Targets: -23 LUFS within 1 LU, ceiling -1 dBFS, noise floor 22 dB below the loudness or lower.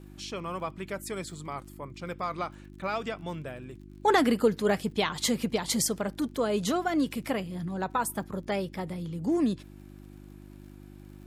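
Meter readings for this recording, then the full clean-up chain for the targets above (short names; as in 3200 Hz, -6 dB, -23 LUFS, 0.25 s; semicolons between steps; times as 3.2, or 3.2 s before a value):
ticks 49/s; hum 50 Hz; harmonics up to 350 Hz; hum level -47 dBFS; loudness -30.0 LUFS; peak -11.5 dBFS; loudness target -23.0 LUFS
-> de-click; de-hum 50 Hz, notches 7; gain +7 dB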